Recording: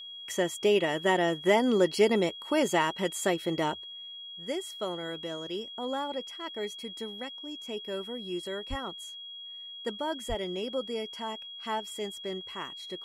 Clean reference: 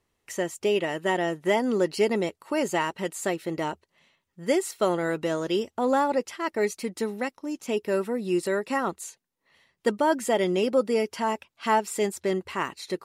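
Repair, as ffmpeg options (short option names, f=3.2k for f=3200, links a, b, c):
-filter_complex "[0:a]bandreject=f=3.3k:w=30,asplit=3[a][b][c];[a]afade=t=out:st=8.69:d=0.02[d];[b]highpass=f=140:w=0.5412,highpass=f=140:w=1.3066,afade=t=in:st=8.69:d=0.02,afade=t=out:st=8.81:d=0.02[e];[c]afade=t=in:st=8.81:d=0.02[f];[d][e][f]amix=inputs=3:normalize=0,asplit=3[g][h][i];[g]afade=t=out:st=10.28:d=0.02[j];[h]highpass=f=140:w=0.5412,highpass=f=140:w=1.3066,afade=t=in:st=10.28:d=0.02,afade=t=out:st=10.4:d=0.02[k];[i]afade=t=in:st=10.4:d=0.02[l];[j][k][l]amix=inputs=3:normalize=0,asetnsamples=n=441:p=0,asendcmd='3.93 volume volume 10.5dB',volume=0dB"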